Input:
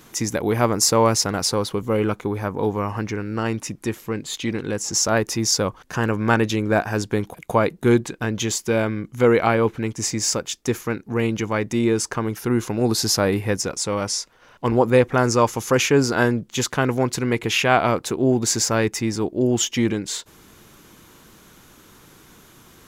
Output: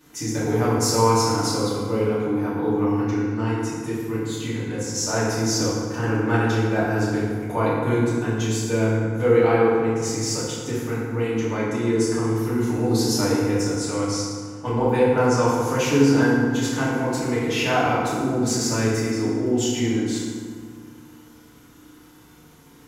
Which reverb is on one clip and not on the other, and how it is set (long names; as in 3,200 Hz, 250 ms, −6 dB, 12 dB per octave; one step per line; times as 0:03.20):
feedback delay network reverb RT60 1.9 s, low-frequency decay 1.35×, high-frequency decay 0.55×, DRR −10 dB
level −13 dB